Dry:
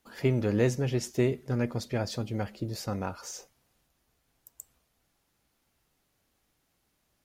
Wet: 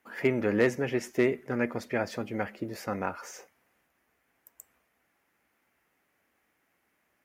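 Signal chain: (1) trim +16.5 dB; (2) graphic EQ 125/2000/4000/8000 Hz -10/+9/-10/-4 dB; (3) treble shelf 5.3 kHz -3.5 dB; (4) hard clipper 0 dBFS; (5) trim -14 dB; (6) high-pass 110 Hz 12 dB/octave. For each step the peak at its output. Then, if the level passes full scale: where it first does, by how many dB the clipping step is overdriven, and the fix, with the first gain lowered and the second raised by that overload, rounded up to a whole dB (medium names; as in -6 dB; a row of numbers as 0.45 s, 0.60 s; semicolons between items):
+4.0 dBFS, +4.0 dBFS, +4.0 dBFS, 0.0 dBFS, -14.0 dBFS, -12.0 dBFS; step 1, 4.0 dB; step 1 +12.5 dB, step 5 -10 dB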